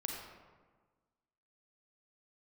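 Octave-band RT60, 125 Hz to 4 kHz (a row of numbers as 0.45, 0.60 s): 1.6, 1.6, 1.4, 1.4, 1.1, 0.75 s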